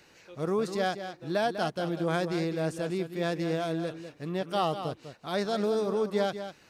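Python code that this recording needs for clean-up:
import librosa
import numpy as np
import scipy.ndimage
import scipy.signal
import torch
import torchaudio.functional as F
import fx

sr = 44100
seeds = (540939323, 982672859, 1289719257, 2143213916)

y = fx.fix_echo_inverse(x, sr, delay_ms=198, level_db=-10.0)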